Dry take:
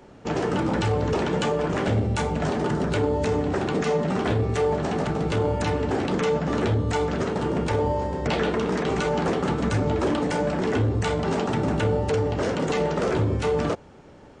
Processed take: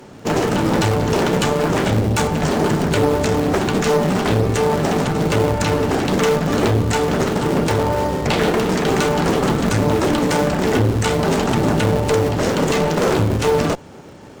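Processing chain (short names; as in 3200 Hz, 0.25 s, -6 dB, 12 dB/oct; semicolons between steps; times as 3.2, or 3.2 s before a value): HPF 90 Hz 12 dB/oct; high shelf 5000 Hz +9.5 dB; in parallel at -7.5 dB: decimation with a swept rate 40×, swing 160% 2.2 Hz; on the sum: one-sided clip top -26 dBFS; gain +7 dB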